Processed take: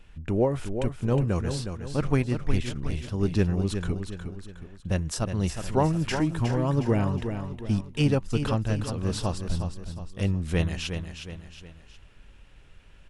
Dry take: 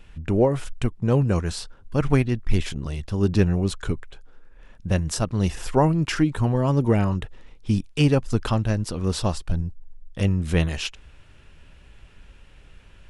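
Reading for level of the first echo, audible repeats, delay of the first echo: -8.0 dB, 3, 0.363 s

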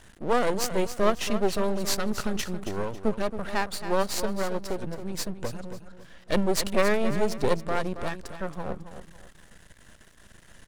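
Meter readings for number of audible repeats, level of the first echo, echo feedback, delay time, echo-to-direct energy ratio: 3, -11.0 dB, 31%, 0.274 s, -10.5 dB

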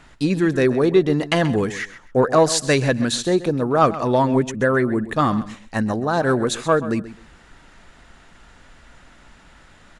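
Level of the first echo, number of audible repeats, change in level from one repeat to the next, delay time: -15.0 dB, 2, -13.0 dB, 0.131 s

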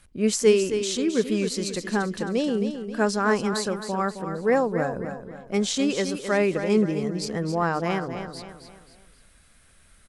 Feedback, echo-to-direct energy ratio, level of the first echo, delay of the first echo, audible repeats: 40%, -8.0 dB, -9.0 dB, 0.266 s, 4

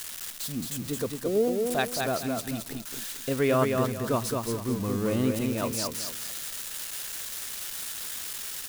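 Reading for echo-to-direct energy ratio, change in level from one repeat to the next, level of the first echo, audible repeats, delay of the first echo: -3.5 dB, -10.5 dB, -4.0 dB, 3, 0.219 s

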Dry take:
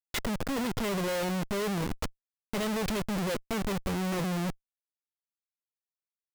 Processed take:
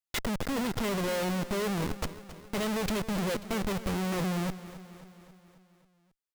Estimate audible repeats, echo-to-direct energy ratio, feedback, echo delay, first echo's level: 5, -13.0 dB, 59%, 0.269 s, -15.0 dB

